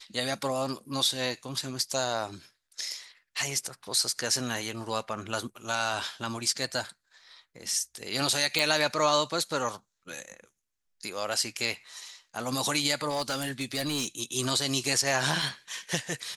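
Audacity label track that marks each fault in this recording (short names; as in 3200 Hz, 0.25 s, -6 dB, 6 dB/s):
8.590000	8.590000	pop
13.090000	14.080000	clipped -25.5 dBFS
15.420000	15.420000	gap 2.4 ms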